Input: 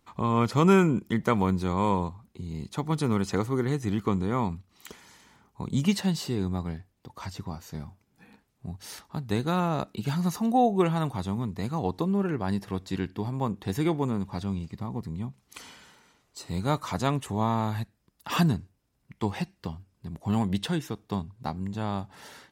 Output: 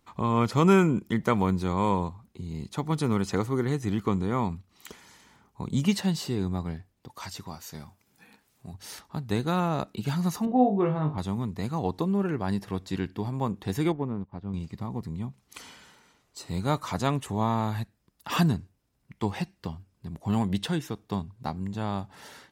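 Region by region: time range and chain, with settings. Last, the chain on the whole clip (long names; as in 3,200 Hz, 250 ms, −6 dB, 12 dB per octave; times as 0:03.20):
0:07.09–0:08.74: spectral tilt +2 dB per octave + upward compression, threshold −59 dBFS
0:10.45–0:11.18: high-pass filter 43 Hz + head-to-tape spacing loss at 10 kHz 41 dB + flutter between parallel walls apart 3.4 metres, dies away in 0.25 s
0:13.92–0:14.54: mu-law and A-law mismatch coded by A + head-to-tape spacing loss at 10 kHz 38 dB + expander for the loud parts, over −50 dBFS
whole clip: no processing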